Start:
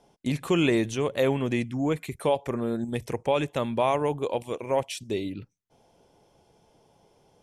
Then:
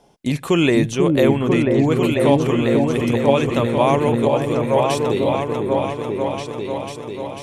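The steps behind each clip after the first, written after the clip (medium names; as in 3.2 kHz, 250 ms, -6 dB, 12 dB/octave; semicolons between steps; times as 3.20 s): delay with an opening low-pass 494 ms, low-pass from 400 Hz, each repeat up 2 oct, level 0 dB; trim +6.5 dB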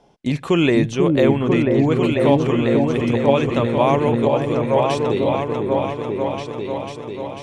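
distance through air 74 m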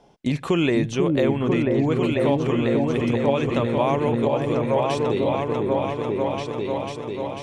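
compression 2:1, threshold -20 dBFS, peak gain reduction 6.5 dB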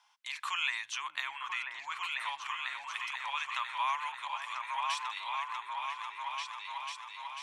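elliptic high-pass 990 Hz, stop band 50 dB; trim -2.5 dB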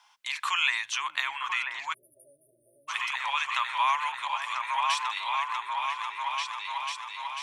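spectral selection erased 1.93–2.88 s, 650–9300 Hz; trim +7 dB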